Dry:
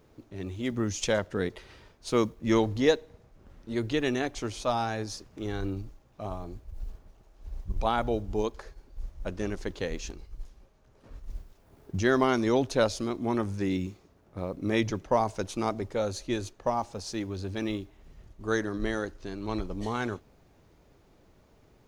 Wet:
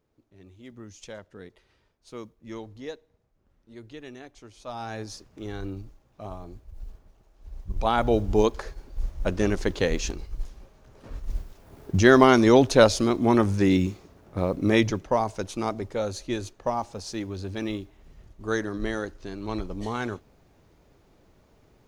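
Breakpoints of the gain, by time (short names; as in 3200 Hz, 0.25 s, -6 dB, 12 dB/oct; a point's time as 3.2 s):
4.53 s -14.5 dB
4.95 s -2 dB
7.54 s -2 dB
8.23 s +8.5 dB
14.57 s +8.5 dB
15.17 s +1 dB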